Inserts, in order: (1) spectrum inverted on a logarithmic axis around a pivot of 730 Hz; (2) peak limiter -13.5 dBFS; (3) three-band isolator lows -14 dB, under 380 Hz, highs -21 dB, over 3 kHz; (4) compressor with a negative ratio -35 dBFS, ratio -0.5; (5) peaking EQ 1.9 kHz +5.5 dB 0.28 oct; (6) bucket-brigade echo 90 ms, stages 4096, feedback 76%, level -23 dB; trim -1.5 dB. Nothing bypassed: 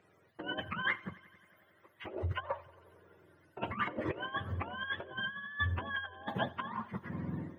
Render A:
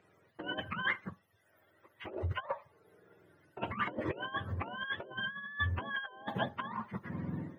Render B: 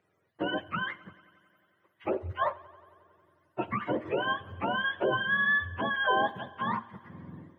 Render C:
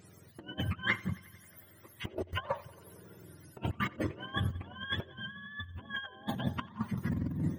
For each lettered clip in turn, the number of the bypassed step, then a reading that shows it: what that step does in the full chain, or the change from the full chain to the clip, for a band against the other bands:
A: 6, echo-to-direct -19.5 dB to none; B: 4, crest factor change -4.0 dB; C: 3, 250 Hz band +6.0 dB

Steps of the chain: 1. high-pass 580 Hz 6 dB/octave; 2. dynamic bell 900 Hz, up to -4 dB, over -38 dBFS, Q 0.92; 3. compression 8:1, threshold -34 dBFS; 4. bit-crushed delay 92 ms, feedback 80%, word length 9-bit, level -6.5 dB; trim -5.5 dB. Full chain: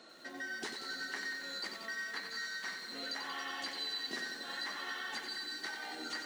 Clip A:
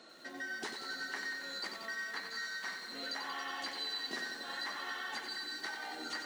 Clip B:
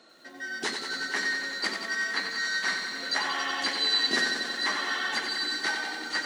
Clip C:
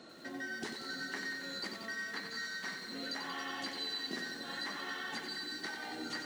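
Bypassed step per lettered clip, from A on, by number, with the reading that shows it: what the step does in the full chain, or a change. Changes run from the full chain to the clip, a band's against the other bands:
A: 2, 1 kHz band +2.5 dB; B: 3, mean gain reduction 9.0 dB; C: 1, 125 Hz band +9.0 dB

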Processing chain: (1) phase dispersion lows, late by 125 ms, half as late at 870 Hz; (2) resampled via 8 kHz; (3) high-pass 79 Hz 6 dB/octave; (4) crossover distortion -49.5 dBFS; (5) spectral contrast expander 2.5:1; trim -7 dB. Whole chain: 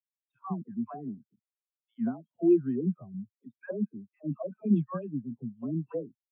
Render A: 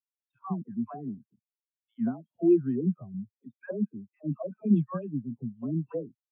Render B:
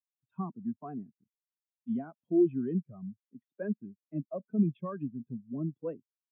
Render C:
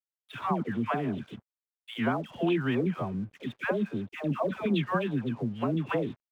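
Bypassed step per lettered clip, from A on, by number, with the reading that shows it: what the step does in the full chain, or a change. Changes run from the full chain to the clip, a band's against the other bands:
3, 125 Hz band +1.5 dB; 1, loudness change -2.0 LU; 5, 1 kHz band +9.5 dB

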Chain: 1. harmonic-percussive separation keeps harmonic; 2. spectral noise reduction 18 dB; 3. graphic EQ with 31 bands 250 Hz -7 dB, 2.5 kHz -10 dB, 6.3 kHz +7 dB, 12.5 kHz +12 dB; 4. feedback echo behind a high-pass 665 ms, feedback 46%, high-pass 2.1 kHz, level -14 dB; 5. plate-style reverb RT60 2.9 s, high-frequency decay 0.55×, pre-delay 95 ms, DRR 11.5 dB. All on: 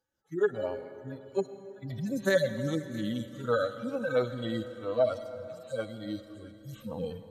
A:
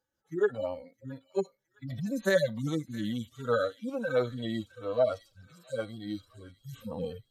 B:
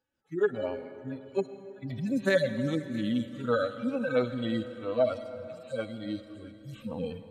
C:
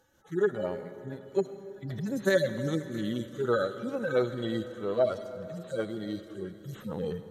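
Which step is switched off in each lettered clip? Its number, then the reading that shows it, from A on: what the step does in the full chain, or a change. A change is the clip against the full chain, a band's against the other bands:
5, echo-to-direct -10.5 dB to -18.0 dB; 3, 250 Hz band +3.0 dB; 2, momentary loudness spread change -2 LU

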